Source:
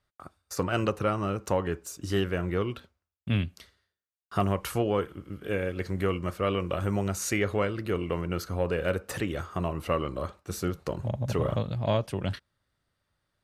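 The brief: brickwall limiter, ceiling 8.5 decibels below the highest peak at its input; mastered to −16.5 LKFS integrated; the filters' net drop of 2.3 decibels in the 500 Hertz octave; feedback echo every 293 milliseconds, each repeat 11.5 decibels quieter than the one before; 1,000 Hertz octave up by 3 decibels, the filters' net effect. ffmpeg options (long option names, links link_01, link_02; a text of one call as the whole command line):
ffmpeg -i in.wav -af "equalizer=frequency=500:width_type=o:gain=-4,equalizer=frequency=1000:width_type=o:gain=5,alimiter=limit=-19.5dB:level=0:latency=1,aecho=1:1:293|586|879:0.266|0.0718|0.0194,volume=16.5dB" out.wav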